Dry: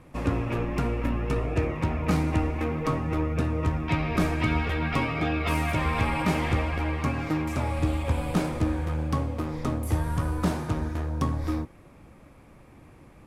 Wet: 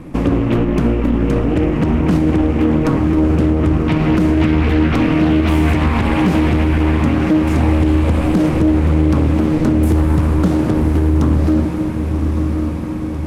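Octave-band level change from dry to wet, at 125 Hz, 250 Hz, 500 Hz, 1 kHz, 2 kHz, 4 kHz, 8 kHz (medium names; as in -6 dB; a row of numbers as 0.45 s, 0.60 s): +12.0 dB, +16.0 dB, +12.0 dB, +6.5 dB, +6.5 dB, +8.0 dB, no reading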